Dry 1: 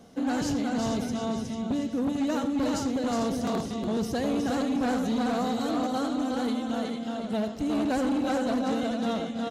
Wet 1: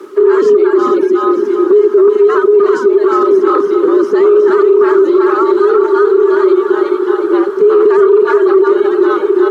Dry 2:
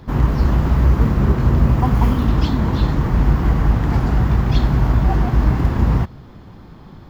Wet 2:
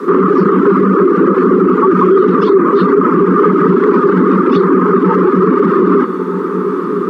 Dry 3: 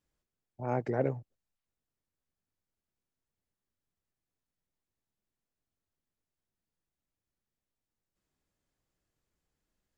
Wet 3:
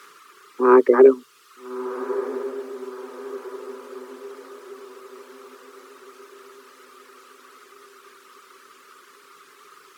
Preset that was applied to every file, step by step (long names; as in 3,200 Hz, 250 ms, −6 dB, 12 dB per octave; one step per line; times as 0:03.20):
frequency shifter +130 Hz
in parallel at −2 dB: downward compressor, threshold −22 dBFS
on the sum: background noise blue −44 dBFS
pair of resonant band-passes 700 Hz, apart 1.6 octaves
reverb reduction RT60 1.1 s
on a send: feedback delay with all-pass diffusion 1,313 ms, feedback 48%, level −13 dB
on the sum: boost into a limiter +25.5 dB
level −1 dB